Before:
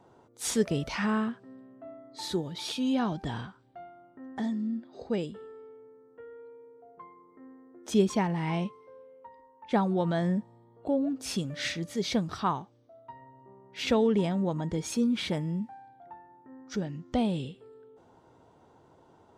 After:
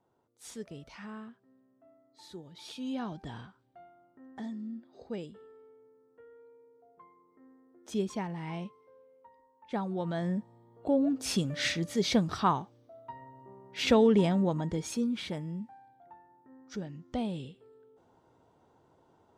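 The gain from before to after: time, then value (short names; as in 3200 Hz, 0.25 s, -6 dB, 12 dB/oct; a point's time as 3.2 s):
2.31 s -16 dB
2.89 s -8 dB
9.76 s -8 dB
11.09 s +2 dB
14.34 s +2 dB
15.25 s -6 dB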